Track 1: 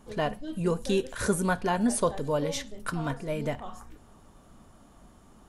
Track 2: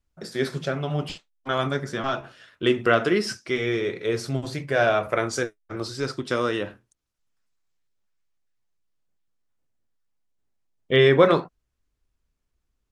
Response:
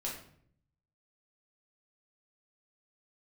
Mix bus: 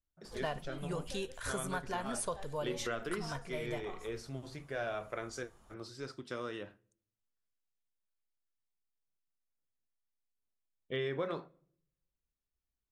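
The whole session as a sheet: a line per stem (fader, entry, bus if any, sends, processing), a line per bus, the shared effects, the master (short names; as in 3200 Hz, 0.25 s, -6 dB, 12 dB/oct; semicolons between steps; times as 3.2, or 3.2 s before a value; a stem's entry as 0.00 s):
+2.0 dB, 0.25 s, no send, bell 260 Hz -12 dB 1.2 oct; auto duck -8 dB, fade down 1.00 s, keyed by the second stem
-16.0 dB, 0.00 s, send -22.5 dB, dry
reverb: on, RT60 0.60 s, pre-delay 5 ms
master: compressor 3:1, threshold -33 dBFS, peak gain reduction 6 dB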